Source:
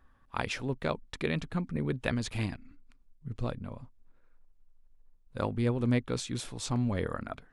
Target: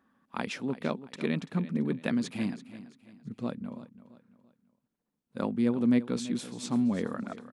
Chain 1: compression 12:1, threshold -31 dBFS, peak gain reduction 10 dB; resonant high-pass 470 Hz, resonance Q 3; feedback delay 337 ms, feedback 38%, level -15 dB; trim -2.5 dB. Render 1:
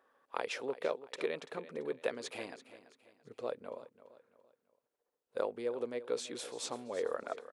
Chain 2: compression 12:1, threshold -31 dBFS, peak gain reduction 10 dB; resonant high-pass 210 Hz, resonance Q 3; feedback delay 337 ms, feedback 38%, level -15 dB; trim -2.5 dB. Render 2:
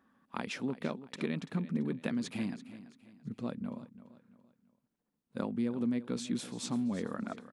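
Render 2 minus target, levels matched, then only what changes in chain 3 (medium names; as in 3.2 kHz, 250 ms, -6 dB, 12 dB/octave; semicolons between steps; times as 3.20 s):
compression: peak gain reduction +10 dB
remove: compression 12:1, threshold -31 dBFS, peak gain reduction 10 dB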